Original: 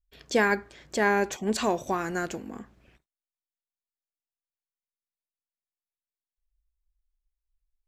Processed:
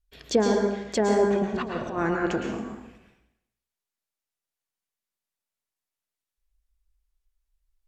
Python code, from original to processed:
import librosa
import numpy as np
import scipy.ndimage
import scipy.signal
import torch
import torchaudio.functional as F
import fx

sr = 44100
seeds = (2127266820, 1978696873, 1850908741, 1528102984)

y = fx.env_lowpass_down(x, sr, base_hz=640.0, full_db=-21.5)
y = fx.over_compress(y, sr, threshold_db=-32.0, ratio=-0.5, at=(1.3, 2.41))
y = fx.rev_plate(y, sr, seeds[0], rt60_s=0.81, hf_ratio=0.95, predelay_ms=100, drr_db=1.5)
y = y * librosa.db_to_amplitude(3.5)